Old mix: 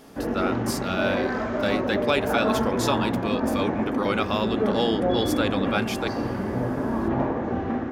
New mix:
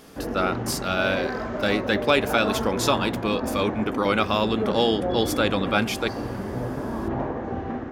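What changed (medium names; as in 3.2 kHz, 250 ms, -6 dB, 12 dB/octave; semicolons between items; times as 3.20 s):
speech +3.5 dB; background: send -10.5 dB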